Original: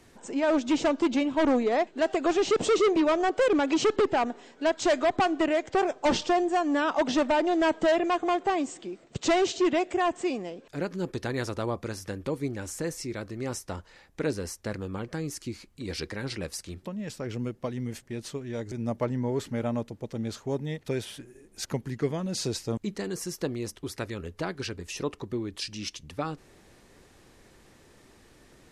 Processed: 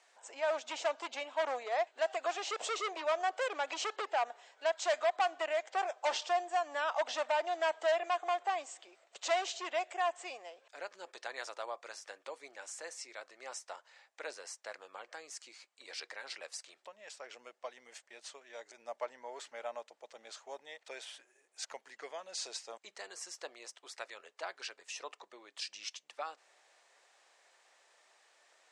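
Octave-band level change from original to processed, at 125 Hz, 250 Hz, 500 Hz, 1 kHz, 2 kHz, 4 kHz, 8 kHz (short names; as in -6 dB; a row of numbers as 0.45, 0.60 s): under -40 dB, -30.0 dB, -10.0 dB, -6.0 dB, -6.0 dB, -6.0 dB, -6.5 dB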